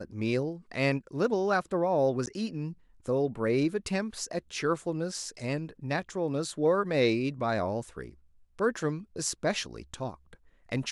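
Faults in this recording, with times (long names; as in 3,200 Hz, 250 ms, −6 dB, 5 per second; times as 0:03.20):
0:02.26–0:02.27: drop-out 9.9 ms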